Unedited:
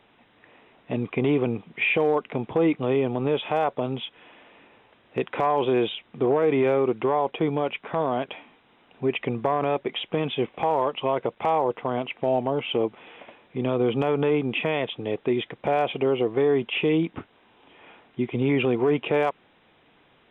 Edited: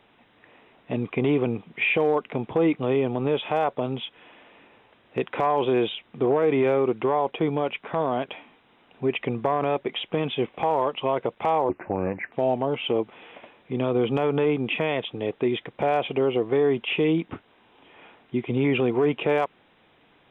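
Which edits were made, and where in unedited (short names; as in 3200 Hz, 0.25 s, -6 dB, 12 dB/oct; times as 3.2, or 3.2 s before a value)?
11.69–12.17 speed 76%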